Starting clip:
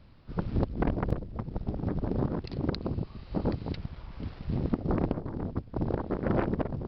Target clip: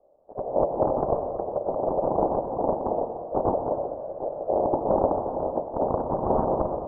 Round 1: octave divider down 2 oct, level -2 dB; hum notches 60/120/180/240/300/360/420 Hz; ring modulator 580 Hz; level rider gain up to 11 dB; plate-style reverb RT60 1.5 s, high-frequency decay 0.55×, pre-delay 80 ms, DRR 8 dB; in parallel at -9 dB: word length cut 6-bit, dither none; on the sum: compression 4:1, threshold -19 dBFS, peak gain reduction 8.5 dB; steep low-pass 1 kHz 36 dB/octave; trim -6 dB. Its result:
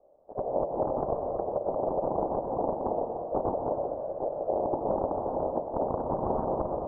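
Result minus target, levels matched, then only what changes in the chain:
compression: peak gain reduction +8.5 dB
remove: compression 4:1, threshold -19 dBFS, peak gain reduction 8.5 dB

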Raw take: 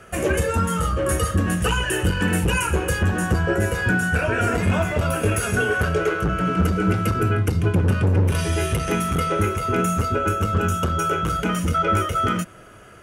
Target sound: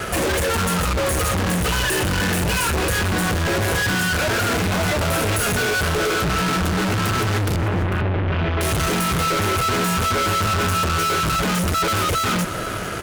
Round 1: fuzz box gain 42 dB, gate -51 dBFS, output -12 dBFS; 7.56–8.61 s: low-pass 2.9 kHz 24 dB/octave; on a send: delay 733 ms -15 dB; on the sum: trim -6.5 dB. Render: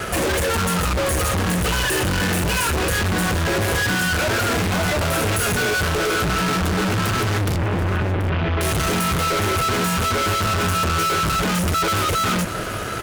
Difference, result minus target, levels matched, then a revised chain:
echo 286 ms late
fuzz box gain 42 dB, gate -51 dBFS, output -12 dBFS; 7.56–8.61 s: low-pass 2.9 kHz 24 dB/octave; on a send: delay 447 ms -15 dB; on the sum: trim -6.5 dB

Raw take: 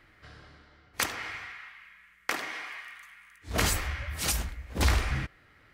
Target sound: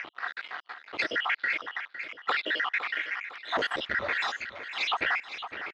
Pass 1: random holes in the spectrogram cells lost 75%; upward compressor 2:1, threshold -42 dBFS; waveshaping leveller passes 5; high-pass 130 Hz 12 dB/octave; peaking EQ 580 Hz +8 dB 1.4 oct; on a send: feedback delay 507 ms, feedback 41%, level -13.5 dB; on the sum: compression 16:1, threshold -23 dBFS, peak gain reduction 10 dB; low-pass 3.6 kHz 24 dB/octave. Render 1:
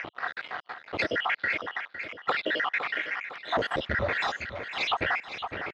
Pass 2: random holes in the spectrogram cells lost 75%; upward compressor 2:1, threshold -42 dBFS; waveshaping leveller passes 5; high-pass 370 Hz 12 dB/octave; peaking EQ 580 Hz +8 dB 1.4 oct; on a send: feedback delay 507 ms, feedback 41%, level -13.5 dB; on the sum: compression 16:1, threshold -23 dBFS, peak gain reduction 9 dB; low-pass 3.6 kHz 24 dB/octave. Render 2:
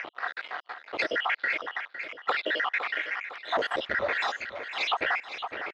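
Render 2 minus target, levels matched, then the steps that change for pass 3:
500 Hz band +4.5 dB
remove: peaking EQ 580 Hz +8 dB 1.4 oct

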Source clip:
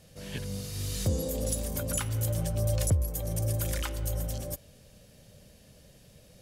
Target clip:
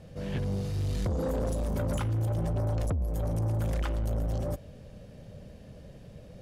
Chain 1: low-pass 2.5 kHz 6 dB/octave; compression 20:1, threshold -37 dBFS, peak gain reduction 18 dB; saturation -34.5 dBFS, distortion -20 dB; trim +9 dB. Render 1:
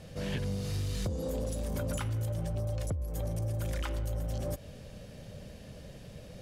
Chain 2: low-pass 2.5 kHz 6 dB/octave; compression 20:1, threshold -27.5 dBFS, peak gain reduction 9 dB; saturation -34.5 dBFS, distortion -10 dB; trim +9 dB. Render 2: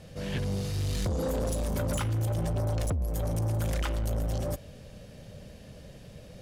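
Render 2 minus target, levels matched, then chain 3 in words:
2 kHz band +3.5 dB
low-pass 950 Hz 6 dB/octave; compression 20:1, threshold -27.5 dBFS, peak gain reduction 9 dB; saturation -34.5 dBFS, distortion -11 dB; trim +9 dB

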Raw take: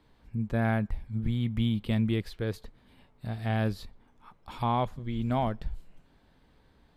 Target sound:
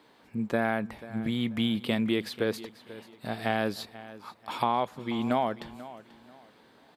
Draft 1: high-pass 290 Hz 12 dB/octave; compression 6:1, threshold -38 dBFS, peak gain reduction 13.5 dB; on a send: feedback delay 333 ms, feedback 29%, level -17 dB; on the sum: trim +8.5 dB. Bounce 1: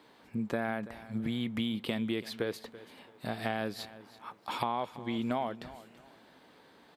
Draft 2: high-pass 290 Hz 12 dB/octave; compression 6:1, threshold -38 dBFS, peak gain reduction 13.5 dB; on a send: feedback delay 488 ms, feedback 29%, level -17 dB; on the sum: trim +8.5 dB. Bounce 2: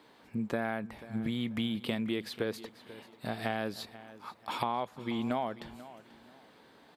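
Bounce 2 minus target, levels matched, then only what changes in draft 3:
compression: peak gain reduction +6.5 dB
change: compression 6:1, threshold -30.5 dBFS, peak gain reduction 7.5 dB

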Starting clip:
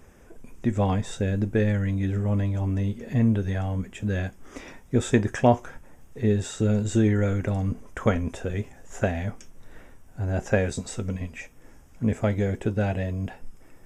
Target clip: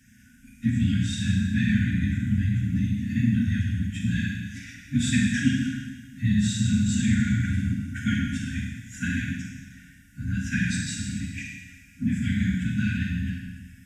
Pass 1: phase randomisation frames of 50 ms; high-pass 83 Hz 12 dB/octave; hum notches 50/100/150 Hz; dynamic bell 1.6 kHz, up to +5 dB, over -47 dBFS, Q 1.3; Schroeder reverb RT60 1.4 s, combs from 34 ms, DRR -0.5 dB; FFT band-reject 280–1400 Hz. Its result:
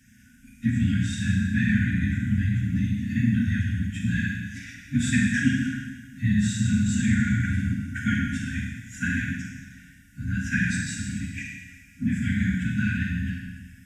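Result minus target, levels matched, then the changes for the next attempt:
4 kHz band -3.5 dB
change: dynamic bell 3.9 kHz, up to +5 dB, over -47 dBFS, Q 1.3

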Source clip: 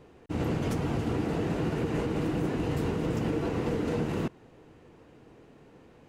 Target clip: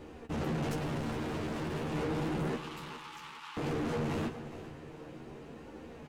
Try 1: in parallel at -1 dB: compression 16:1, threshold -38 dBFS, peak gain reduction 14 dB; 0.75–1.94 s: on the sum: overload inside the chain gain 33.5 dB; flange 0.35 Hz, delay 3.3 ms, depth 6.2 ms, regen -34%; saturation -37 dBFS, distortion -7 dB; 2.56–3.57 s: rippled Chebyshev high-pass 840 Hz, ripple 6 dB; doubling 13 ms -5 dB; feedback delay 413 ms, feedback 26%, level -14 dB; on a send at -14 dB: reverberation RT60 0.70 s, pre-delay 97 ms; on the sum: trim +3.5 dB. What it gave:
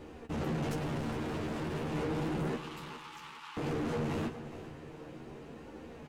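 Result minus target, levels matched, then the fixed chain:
compression: peak gain reduction +7.5 dB
in parallel at -1 dB: compression 16:1, threshold -30 dBFS, peak gain reduction 6.5 dB; 0.75–1.94 s: on the sum: overload inside the chain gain 33.5 dB; flange 0.35 Hz, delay 3.3 ms, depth 6.2 ms, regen -34%; saturation -37 dBFS, distortion -6 dB; 2.56–3.57 s: rippled Chebyshev high-pass 840 Hz, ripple 6 dB; doubling 13 ms -5 dB; feedback delay 413 ms, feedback 26%, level -14 dB; on a send at -14 dB: reverberation RT60 0.70 s, pre-delay 97 ms; on the sum: trim +3.5 dB

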